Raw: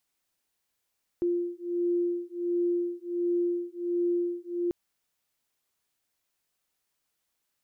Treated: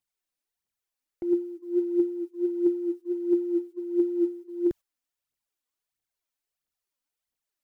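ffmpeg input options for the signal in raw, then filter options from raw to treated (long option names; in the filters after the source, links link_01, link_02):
-f lavfi -i "aevalsrc='0.0355*(sin(2*PI*348*t)+sin(2*PI*349.4*t))':duration=3.49:sample_rate=44100"
-af "agate=range=-11dB:threshold=-41dB:ratio=16:detection=peak,aphaser=in_gain=1:out_gain=1:delay=4.2:decay=0.63:speed=1.5:type=triangular"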